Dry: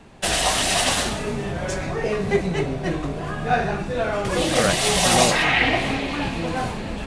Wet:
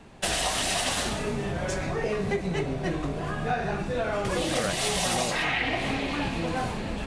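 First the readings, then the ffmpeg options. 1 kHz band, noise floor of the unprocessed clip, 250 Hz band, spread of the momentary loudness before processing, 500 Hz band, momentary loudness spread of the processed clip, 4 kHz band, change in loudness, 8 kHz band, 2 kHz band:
−7.0 dB, −30 dBFS, −5.0 dB, 10 LU, −6.0 dB, 5 LU, −7.0 dB, −6.5 dB, −7.0 dB, −7.0 dB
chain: -af "acompressor=threshold=-21dB:ratio=6,volume=-2.5dB"

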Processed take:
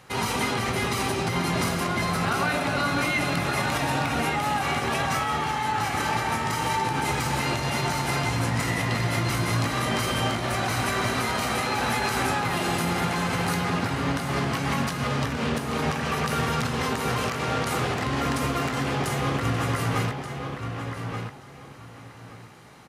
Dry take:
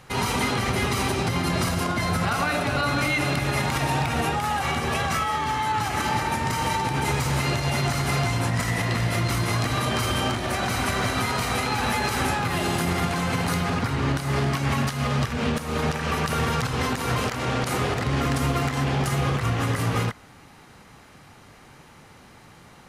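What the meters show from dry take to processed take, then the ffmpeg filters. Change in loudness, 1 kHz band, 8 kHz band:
−1.5 dB, −0.5 dB, −1.0 dB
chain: -filter_complex "[0:a]highpass=frequency=110:poles=1,asplit=2[link_01][link_02];[link_02]adelay=18,volume=-11dB[link_03];[link_01][link_03]amix=inputs=2:normalize=0,asplit=2[link_04][link_05];[link_05]adelay=1179,lowpass=frequency=3500:poles=1,volume=-6dB,asplit=2[link_06][link_07];[link_07]adelay=1179,lowpass=frequency=3500:poles=1,volume=0.23,asplit=2[link_08][link_09];[link_09]adelay=1179,lowpass=frequency=3500:poles=1,volume=0.23[link_10];[link_06][link_08][link_10]amix=inputs=3:normalize=0[link_11];[link_04][link_11]amix=inputs=2:normalize=0,volume=-1.5dB"

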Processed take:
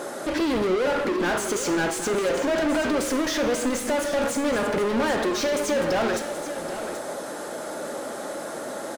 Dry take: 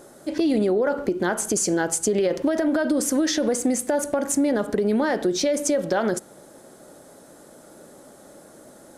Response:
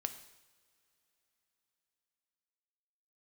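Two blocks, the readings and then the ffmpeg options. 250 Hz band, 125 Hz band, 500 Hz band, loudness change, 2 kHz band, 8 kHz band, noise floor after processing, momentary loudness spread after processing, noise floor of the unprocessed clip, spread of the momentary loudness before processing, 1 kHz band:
−3.0 dB, −2.0 dB, −0.5 dB, −2.5 dB, +3.5 dB, −4.5 dB, −34 dBFS, 10 LU, −49 dBFS, 3 LU, +3.0 dB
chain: -filter_complex "[0:a]asplit=2[link_01][link_02];[link_02]highpass=frequency=720:poles=1,volume=33dB,asoftclip=type=tanh:threshold=-11.5dB[link_03];[link_01][link_03]amix=inputs=2:normalize=0,lowpass=frequency=2900:poles=1,volume=-6dB,aecho=1:1:780:0.282[link_04];[1:a]atrim=start_sample=2205[link_05];[link_04][link_05]afir=irnorm=-1:irlink=0,volume=-5.5dB"

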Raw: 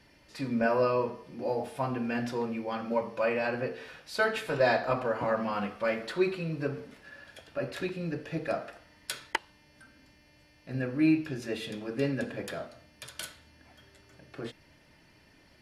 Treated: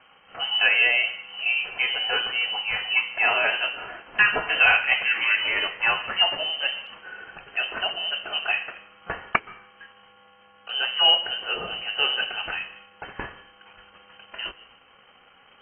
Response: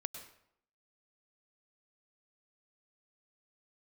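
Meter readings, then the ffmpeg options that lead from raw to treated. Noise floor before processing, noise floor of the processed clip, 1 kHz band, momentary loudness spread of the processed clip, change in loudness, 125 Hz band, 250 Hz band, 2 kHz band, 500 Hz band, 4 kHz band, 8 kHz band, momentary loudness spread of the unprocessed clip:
−61 dBFS, −55 dBFS, +5.0 dB, 19 LU, +9.5 dB, −12.5 dB, −16.0 dB, +14.5 dB, −5.5 dB, +22.0 dB, below −30 dB, 17 LU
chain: -filter_complex "[0:a]crystalizer=i=6.5:c=0,acrusher=bits=7:mix=0:aa=0.5,asplit=2[link_01][link_02];[1:a]atrim=start_sample=2205,asetrate=35280,aresample=44100[link_03];[link_02][link_03]afir=irnorm=-1:irlink=0,volume=-10.5dB[link_04];[link_01][link_04]amix=inputs=2:normalize=0,lowpass=frequency=2700:width_type=q:width=0.5098,lowpass=frequency=2700:width_type=q:width=0.6013,lowpass=frequency=2700:width_type=q:width=0.9,lowpass=frequency=2700:width_type=q:width=2.563,afreqshift=-3200,volume=2.5dB" -ar 32000 -c:a aac -b:a 24k

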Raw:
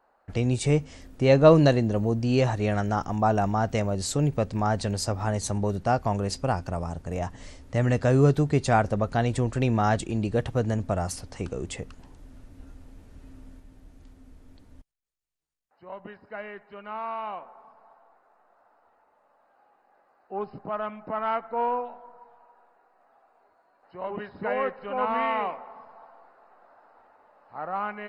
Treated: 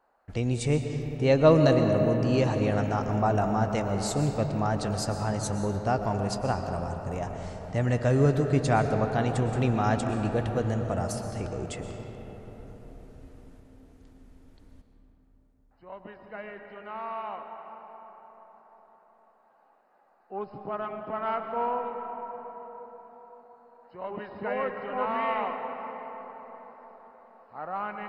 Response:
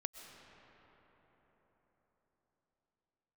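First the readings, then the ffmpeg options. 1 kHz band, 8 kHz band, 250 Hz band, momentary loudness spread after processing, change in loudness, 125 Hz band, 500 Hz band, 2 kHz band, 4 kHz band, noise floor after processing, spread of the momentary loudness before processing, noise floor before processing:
−2.0 dB, −2.5 dB, −1.0 dB, 20 LU, −2.0 dB, −1.5 dB, −1.5 dB, −2.0 dB, −2.5 dB, −63 dBFS, 17 LU, −66 dBFS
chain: -filter_complex "[1:a]atrim=start_sample=2205[link_01];[0:a][link_01]afir=irnorm=-1:irlink=0"

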